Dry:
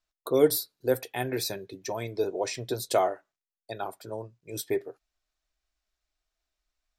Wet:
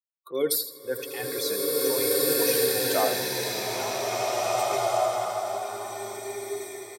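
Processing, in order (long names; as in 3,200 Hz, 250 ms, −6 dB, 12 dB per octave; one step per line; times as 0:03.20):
spectral dynamics exaggerated over time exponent 2
high-pass filter 690 Hz 6 dB per octave
transient designer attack −4 dB, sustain +7 dB
repeating echo 81 ms, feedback 34%, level −11.5 dB
slow-attack reverb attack 2,020 ms, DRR −8 dB
level +4 dB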